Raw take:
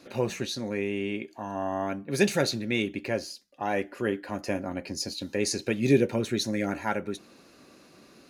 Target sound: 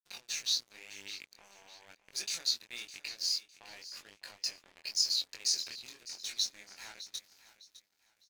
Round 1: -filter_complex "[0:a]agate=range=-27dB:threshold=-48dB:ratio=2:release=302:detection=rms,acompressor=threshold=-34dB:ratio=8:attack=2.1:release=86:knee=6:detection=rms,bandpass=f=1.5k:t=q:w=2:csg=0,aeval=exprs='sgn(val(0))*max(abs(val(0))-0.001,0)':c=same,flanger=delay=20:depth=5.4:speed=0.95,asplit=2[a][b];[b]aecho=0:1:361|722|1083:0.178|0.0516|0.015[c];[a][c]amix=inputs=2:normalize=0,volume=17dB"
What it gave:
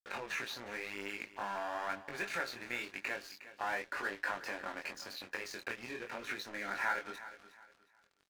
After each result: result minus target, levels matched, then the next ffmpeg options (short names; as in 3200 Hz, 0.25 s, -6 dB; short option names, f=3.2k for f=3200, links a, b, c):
2000 Hz band +16.5 dB; echo 0.246 s early
-filter_complex "[0:a]agate=range=-27dB:threshold=-48dB:ratio=2:release=302:detection=rms,acompressor=threshold=-34dB:ratio=8:attack=2.1:release=86:knee=6:detection=rms,bandpass=f=5k:t=q:w=2:csg=0,aeval=exprs='sgn(val(0))*max(abs(val(0))-0.001,0)':c=same,flanger=delay=20:depth=5.4:speed=0.95,asplit=2[a][b];[b]aecho=0:1:361|722|1083:0.178|0.0516|0.015[c];[a][c]amix=inputs=2:normalize=0,volume=17dB"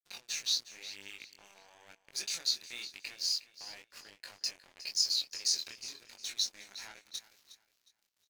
echo 0.246 s early
-filter_complex "[0:a]agate=range=-27dB:threshold=-48dB:ratio=2:release=302:detection=rms,acompressor=threshold=-34dB:ratio=8:attack=2.1:release=86:knee=6:detection=rms,bandpass=f=5k:t=q:w=2:csg=0,aeval=exprs='sgn(val(0))*max(abs(val(0))-0.001,0)':c=same,flanger=delay=20:depth=5.4:speed=0.95,asplit=2[a][b];[b]aecho=0:1:607|1214|1821:0.178|0.0516|0.015[c];[a][c]amix=inputs=2:normalize=0,volume=17dB"